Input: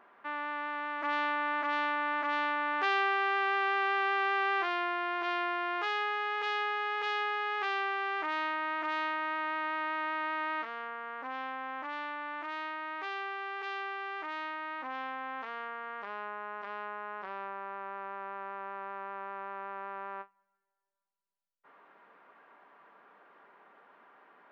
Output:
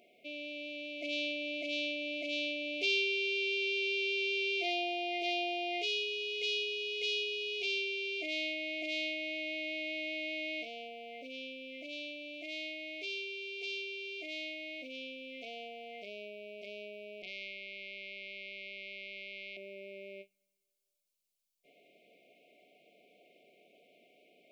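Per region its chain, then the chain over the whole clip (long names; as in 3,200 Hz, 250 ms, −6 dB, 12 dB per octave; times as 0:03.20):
0:17.22–0:19.57: moving average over 10 samples + notch filter 360 Hz + highs frequency-modulated by the lows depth 0.47 ms
whole clip: high-shelf EQ 2,300 Hz +11 dB; brick-wall band-stop 740–2,100 Hz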